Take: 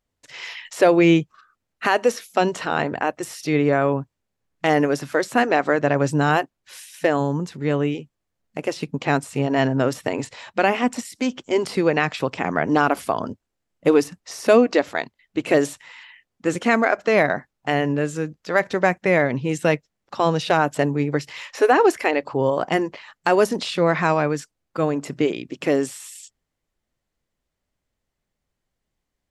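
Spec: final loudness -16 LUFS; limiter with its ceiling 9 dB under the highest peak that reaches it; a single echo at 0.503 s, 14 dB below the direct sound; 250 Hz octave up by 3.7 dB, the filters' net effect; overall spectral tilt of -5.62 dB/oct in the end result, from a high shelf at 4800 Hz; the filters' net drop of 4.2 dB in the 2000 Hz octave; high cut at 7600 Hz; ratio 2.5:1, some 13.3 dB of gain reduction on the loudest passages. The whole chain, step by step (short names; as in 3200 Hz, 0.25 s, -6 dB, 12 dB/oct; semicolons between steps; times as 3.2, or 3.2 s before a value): LPF 7600 Hz; bell 250 Hz +5 dB; bell 2000 Hz -4.5 dB; high shelf 4800 Hz -6 dB; compressor 2.5:1, threshold -30 dBFS; limiter -20.5 dBFS; echo 0.503 s -14 dB; gain +16.5 dB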